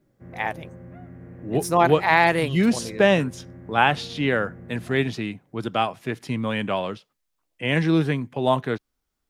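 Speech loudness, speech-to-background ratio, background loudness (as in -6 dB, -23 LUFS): -23.0 LUFS, 19.0 dB, -42.0 LUFS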